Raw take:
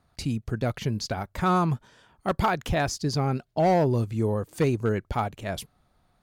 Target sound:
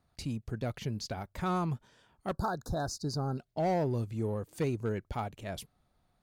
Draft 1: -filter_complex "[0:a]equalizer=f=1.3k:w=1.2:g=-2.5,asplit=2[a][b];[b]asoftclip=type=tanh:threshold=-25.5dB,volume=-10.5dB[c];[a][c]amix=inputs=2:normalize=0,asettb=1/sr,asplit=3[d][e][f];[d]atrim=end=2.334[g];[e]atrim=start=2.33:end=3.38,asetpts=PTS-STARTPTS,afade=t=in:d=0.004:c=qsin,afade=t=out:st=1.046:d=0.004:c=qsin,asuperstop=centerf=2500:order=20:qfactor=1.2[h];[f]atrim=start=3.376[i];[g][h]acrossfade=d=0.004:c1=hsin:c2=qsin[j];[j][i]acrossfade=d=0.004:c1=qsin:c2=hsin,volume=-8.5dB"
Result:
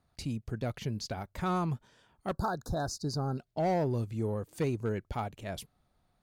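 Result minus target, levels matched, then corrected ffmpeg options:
soft clip: distortion -4 dB
-filter_complex "[0:a]equalizer=f=1.3k:w=1.2:g=-2.5,asplit=2[a][b];[b]asoftclip=type=tanh:threshold=-32dB,volume=-10.5dB[c];[a][c]amix=inputs=2:normalize=0,asettb=1/sr,asplit=3[d][e][f];[d]atrim=end=2.334[g];[e]atrim=start=2.33:end=3.38,asetpts=PTS-STARTPTS,afade=t=in:d=0.004:c=qsin,afade=t=out:st=1.046:d=0.004:c=qsin,asuperstop=centerf=2500:order=20:qfactor=1.2[h];[f]atrim=start=3.376[i];[g][h]acrossfade=d=0.004:c1=hsin:c2=qsin[j];[j][i]acrossfade=d=0.004:c1=qsin:c2=hsin,volume=-8.5dB"

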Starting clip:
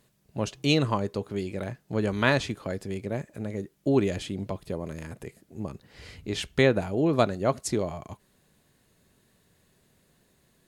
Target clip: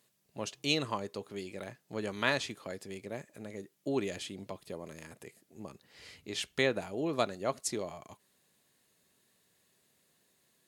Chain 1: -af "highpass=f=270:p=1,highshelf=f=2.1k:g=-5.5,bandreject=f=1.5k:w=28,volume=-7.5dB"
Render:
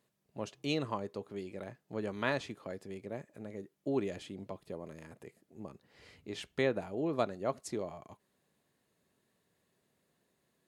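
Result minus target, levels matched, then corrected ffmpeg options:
4000 Hz band -6.0 dB
-af "highpass=f=270:p=1,highshelf=f=2.1k:g=6,bandreject=f=1.5k:w=28,volume=-7.5dB"

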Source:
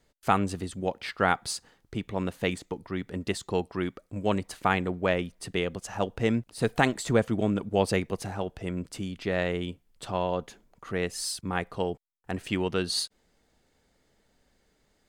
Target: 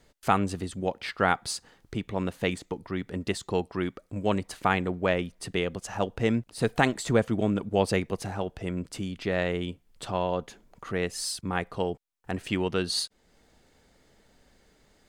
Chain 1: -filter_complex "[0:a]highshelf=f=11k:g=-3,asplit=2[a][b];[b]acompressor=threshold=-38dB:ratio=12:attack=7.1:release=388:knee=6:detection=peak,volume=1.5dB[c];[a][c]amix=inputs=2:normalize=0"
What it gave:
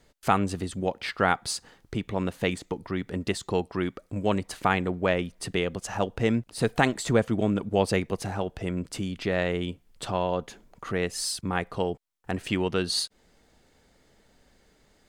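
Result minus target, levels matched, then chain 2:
compressor: peak gain reduction -11 dB
-filter_complex "[0:a]highshelf=f=11k:g=-3,asplit=2[a][b];[b]acompressor=threshold=-50dB:ratio=12:attack=7.1:release=388:knee=6:detection=peak,volume=1.5dB[c];[a][c]amix=inputs=2:normalize=0"

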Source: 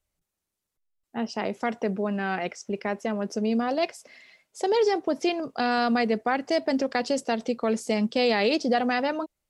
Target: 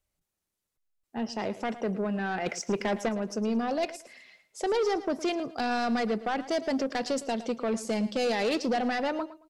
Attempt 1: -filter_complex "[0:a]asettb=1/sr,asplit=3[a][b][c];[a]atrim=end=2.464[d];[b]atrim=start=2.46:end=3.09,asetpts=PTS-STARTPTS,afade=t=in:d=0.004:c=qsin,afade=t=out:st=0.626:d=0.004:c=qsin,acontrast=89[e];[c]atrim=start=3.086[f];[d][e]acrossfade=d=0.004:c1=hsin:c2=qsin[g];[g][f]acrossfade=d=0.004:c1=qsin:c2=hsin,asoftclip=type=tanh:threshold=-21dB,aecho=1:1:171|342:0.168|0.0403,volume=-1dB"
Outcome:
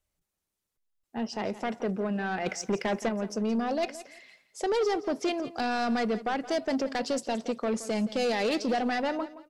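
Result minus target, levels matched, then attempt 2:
echo 60 ms late
-filter_complex "[0:a]asettb=1/sr,asplit=3[a][b][c];[a]atrim=end=2.464[d];[b]atrim=start=2.46:end=3.09,asetpts=PTS-STARTPTS,afade=t=in:d=0.004:c=qsin,afade=t=out:st=0.626:d=0.004:c=qsin,acontrast=89[e];[c]atrim=start=3.086[f];[d][e]acrossfade=d=0.004:c1=hsin:c2=qsin[g];[g][f]acrossfade=d=0.004:c1=qsin:c2=hsin,asoftclip=type=tanh:threshold=-21dB,aecho=1:1:111|222:0.168|0.0403,volume=-1dB"

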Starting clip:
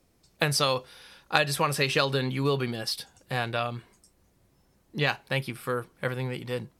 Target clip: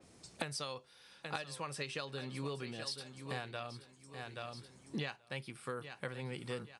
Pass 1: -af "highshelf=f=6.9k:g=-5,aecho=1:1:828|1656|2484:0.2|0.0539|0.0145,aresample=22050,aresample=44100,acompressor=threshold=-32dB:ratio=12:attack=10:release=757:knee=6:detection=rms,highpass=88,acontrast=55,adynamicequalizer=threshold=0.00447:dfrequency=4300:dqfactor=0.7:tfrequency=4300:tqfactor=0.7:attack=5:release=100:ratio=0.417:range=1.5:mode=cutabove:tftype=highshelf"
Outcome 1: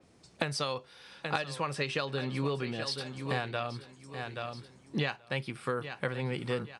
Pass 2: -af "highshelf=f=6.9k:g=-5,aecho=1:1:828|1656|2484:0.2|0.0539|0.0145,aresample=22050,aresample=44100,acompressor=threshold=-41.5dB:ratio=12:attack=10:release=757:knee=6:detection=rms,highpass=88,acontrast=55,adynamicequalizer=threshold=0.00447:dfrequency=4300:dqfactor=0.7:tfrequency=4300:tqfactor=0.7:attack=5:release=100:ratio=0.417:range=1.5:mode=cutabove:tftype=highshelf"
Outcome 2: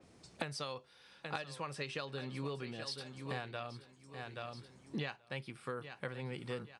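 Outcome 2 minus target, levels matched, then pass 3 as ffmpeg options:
8000 Hz band -5.0 dB
-af "highshelf=f=6.9k:g=6.5,aecho=1:1:828|1656|2484:0.2|0.0539|0.0145,aresample=22050,aresample=44100,acompressor=threshold=-41.5dB:ratio=12:attack=10:release=757:knee=6:detection=rms,highpass=88,acontrast=55,adynamicequalizer=threshold=0.00447:dfrequency=4300:dqfactor=0.7:tfrequency=4300:tqfactor=0.7:attack=5:release=100:ratio=0.417:range=1.5:mode=cutabove:tftype=highshelf"

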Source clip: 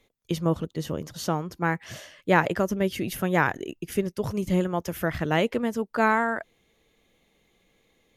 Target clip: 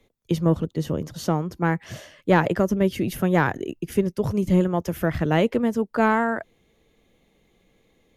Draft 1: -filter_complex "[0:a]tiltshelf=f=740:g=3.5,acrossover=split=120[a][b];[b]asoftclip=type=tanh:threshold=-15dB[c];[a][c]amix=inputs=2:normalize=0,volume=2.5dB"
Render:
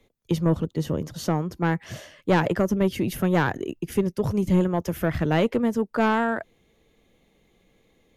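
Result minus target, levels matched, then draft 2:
soft clip: distortion +11 dB
-filter_complex "[0:a]tiltshelf=f=740:g=3.5,acrossover=split=120[a][b];[b]asoftclip=type=tanh:threshold=-7dB[c];[a][c]amix=inputs=2:normalize=0,volume=2.5dB"

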